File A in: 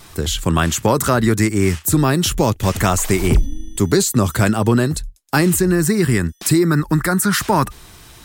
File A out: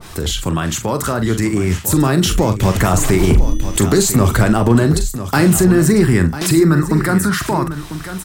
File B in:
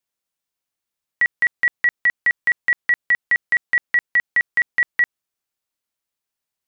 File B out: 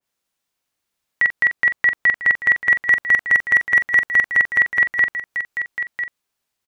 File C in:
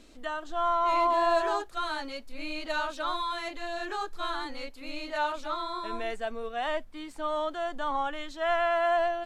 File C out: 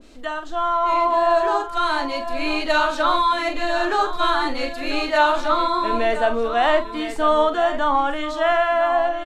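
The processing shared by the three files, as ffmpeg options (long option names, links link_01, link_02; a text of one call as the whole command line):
ffmpeg -i in.wav -filter_complex "[0:a]highshelf=frequency=7400:gain=-4,asplit=2[link_01][link_02];[link_02]acompressor=threshold=-24dB:ratio=12,volume=2dB[link_03];[link_01][link_03]amix=inputs=2:normalize=0,alimiter=limit=-9.5dB:level=0:latency=1:release=81,dynaudnorm=framelen=420:gausssize=9:maxgain=7dB,asoftclip=type=hard:threshold=-5.5dB,asplit=2[link_04][link_05];[link_05]adelay=43,volume=-9.5dB[link_06];[link_04][link_06]amix=inputs=2:normalize=0,aecho=1:1:997:0.251,adynamicequalizer=threshold=0.0447:dfrequency=1700:dqfactor=0.7:tfrequency=1700:tqfactor=0.7:attack=5:release=100:ratio=0.375:range=2.5:mode=cutabove:tftype=highshelf" out.wav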